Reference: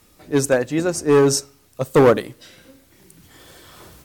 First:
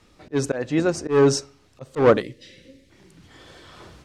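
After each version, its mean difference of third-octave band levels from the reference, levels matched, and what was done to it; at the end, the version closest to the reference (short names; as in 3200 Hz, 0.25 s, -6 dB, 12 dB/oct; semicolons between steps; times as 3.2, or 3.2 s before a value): 4.5 dB: LPF 5100 Hz 12 dB/oct; spectral gain 2.22–2.9, 600–1700 Hz -16 dB; auto swell 0.153 s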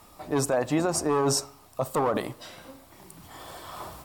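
8.0 dB: band shelf 870 Hz +10.5 dB 1.2 oct; notch 6300 Hz, Q 14; limiter -16 dBFS, peak gain reduction 18 dB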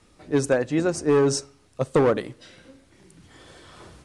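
3.5 dB: elliptic low-pass 10000 Hz, stop band 60 dB; high shelf 3700 Hz -7 dB; compressor 5:1, threshold -16 dBFS, peak gain reduction 6 dB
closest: third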